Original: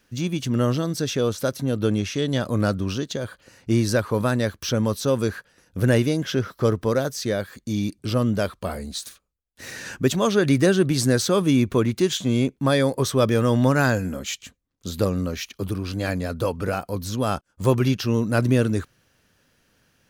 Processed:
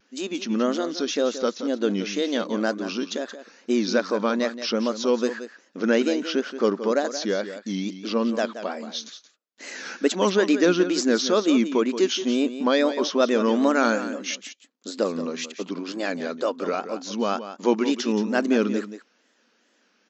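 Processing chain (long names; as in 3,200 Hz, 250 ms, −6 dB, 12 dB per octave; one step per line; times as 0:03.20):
linear-phase brick-wall band-pass 200–7,300 Hz
tape wow and flutter 150 cents
single-tap delay 176 ms −11.5 dB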